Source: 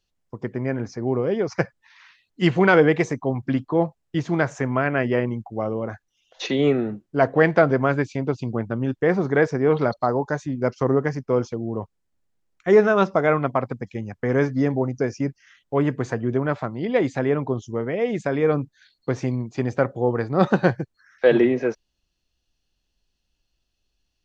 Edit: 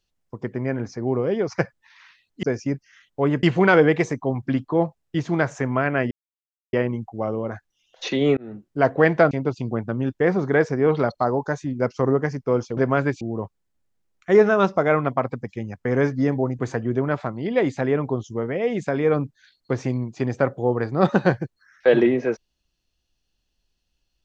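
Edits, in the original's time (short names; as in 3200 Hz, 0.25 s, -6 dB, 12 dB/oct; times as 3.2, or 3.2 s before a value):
5.11 insert silence 0.62 s
6.75–7.08 fade in
7.69–8.13 move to 11.59
14.97–15.97 move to 2.43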